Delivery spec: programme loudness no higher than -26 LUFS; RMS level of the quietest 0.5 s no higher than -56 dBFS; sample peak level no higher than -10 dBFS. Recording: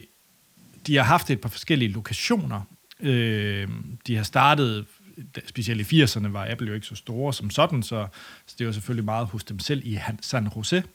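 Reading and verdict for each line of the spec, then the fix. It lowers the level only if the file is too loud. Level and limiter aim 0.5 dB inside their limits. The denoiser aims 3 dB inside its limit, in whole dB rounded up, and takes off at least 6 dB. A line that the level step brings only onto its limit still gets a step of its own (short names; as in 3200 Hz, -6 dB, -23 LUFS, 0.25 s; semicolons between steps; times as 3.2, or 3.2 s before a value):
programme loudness -25.0 LUFS: fail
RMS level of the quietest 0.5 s -60 dBFS: OK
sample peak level -4.0 dBFS: fail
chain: gain -1.5 dB; limiter -10.5 dBFS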